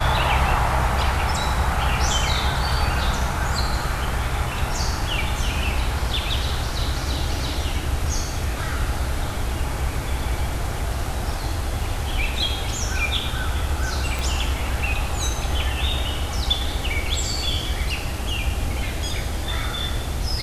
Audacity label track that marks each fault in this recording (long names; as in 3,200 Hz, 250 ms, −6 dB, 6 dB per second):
14.190000	14.190000	click